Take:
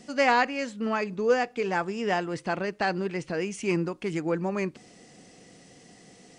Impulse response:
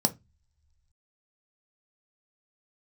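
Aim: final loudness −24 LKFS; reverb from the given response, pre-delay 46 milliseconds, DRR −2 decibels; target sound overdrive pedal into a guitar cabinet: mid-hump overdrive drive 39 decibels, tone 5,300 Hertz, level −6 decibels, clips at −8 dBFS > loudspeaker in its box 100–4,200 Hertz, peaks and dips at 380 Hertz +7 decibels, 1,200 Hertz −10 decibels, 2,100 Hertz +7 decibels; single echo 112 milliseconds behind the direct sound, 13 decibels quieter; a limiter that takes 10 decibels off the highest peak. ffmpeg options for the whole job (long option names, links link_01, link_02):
-filter_complex "[0:a]alimiter=limit=-21dB:level=0:latency=1,aecho=1:1:112:0.224,asplit=2[link_01][link_02];[1:a]atrim=start_sample=2205,adelay=46[link_03];[link_02][link_03]afir=irnorm=-1:irlink=0,volume=-6.5dB[link_04];[link_01][link_04]amix=inputs=2:normalize=0,asplit=2[link_05][link_06];[link_06]highpass=frequency=720:poles=1,volume=39dB,asoftclip=type=tanh:threshold=-8dB[link_07];[link_05][link_07]amix=inputs=2:normalize=0,lowpass=frequency=5300:poles=1,volume=-6dB,highpass=100,equalizer=frequency=380:width_type=q:width=4:gain=7,equalizer=frequency=1200:width_type=q:width=4:gain=-10,equalizer=frequency=2100:width_type=q:width=4:gain=7,lowpass=frequency=4200:width=0.5412,lowpass=frequency=4200:width=1.3066,volume=-10.5dB"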